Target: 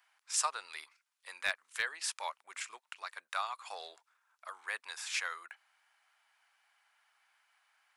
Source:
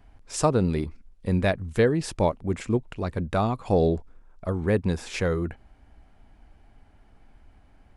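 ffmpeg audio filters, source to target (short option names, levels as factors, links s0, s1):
-af "highpass=f=1100:w=0.5412,highpass=f=1100:w=1.3066,highshelf=f=5200:g=4.5,asoftclip=type=hard:threshold=0.133,volume=0.75"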